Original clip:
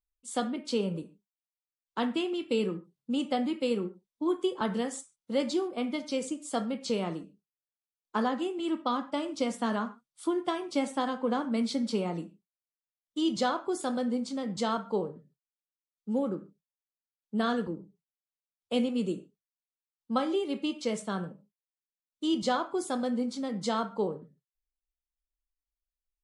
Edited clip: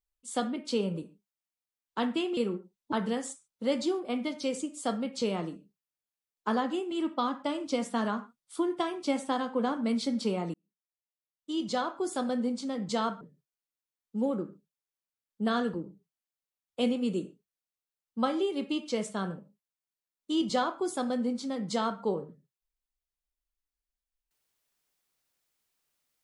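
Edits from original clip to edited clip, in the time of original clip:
2.37–3.68 cut
4.23–4.6 cut
12.22–13.85 fade in
14.89–15.14 cut

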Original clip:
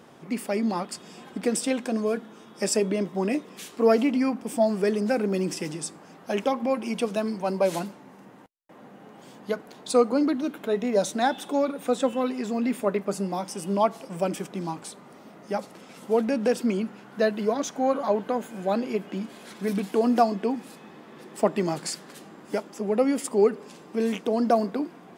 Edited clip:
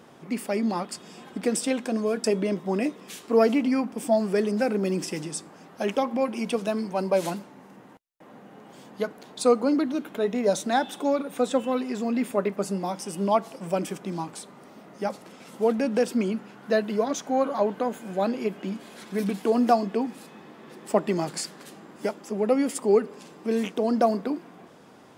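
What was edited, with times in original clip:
2.24–2.73 cut

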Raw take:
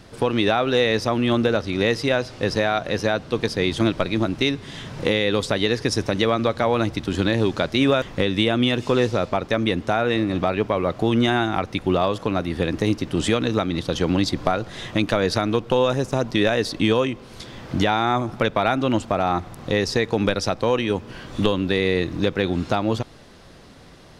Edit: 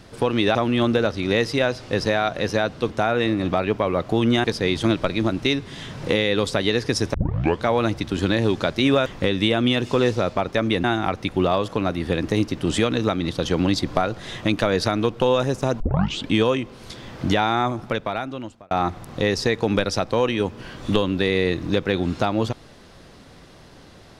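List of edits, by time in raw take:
0.55–1.05 cut
6.1 tape start 0.50 s
9.8–11.34 move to 3.4
16.3 tape start 0.51 s
18.02–19.21 fade out

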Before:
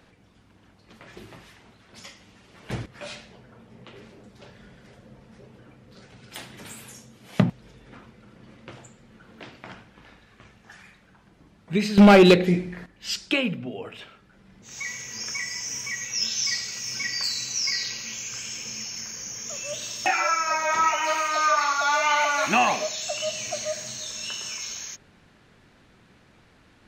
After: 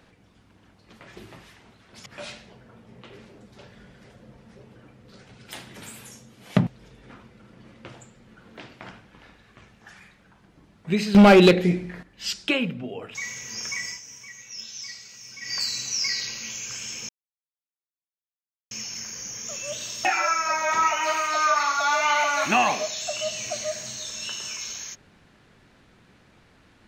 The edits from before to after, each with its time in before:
2.06–2.89 cut
13.98–14.78 cut
15.51–17.17 dip -11.5 dB, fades 0.13 s
18.72 insert silence 1.62 s

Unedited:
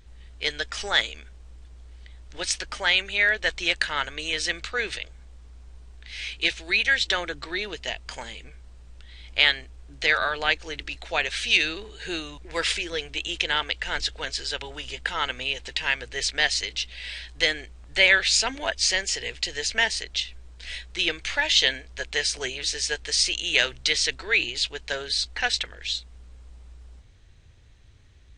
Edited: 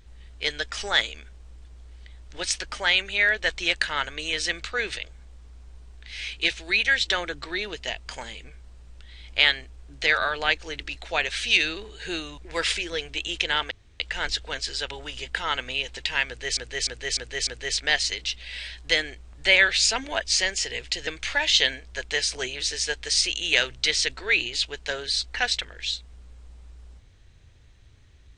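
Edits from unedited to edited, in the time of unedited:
13.71 insert room tone 0.29 s
15.98–16.28 loop, 5 plays
19.58–21.09 cut

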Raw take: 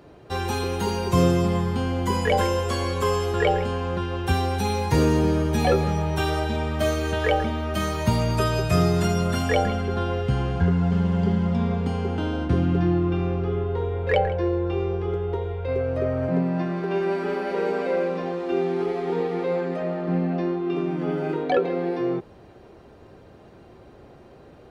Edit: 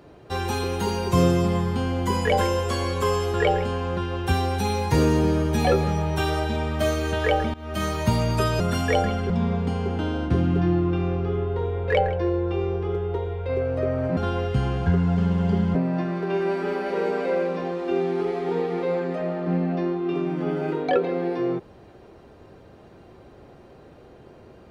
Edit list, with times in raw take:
7.54–7.84 fade in, from -20 dB
8.6–9.21 cut
9.91–11.49 move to 16.36

